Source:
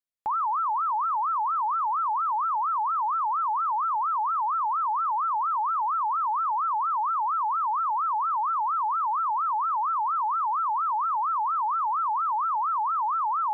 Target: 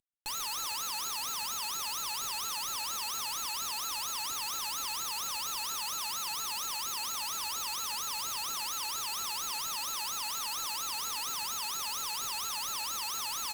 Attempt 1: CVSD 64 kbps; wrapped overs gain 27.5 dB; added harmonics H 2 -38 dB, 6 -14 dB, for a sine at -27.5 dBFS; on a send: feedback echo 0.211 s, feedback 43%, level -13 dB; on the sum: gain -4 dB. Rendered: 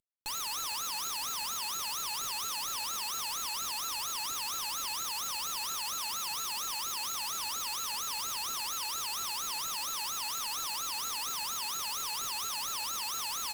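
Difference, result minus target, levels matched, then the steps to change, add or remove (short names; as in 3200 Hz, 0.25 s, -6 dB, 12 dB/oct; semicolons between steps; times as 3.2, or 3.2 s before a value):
echo 74 ms late
change: feedback echo 0.137 s, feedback 43%, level -13 dB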